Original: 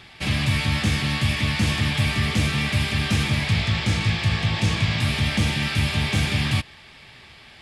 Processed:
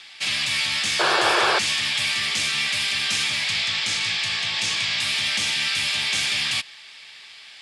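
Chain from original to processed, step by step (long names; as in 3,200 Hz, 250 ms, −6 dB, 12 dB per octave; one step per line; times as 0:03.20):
meter weighting curve ITU-R 468
sound drawn into the spectrogram noise, 0:00.99–0:01.59, 330–1,800 Hz −17 dBFS
level −4 dB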